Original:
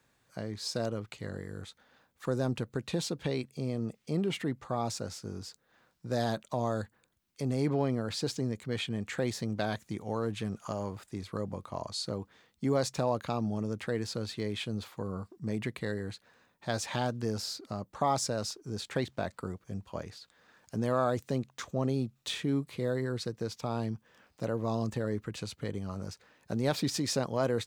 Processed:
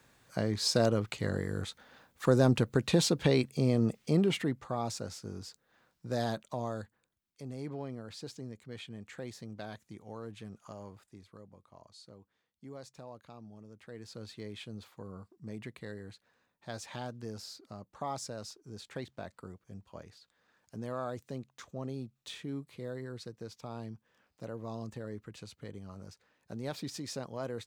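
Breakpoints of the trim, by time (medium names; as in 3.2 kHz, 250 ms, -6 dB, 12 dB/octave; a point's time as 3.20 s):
3.97 s +6.5 dB
4.74 s -2 dB
6.25 s -2 dB
7.44 s -11 dB
10.94 s -11 dB
11.48 s -18.5 dB
13.72 s -18.5 dB
14.24 s -9 dB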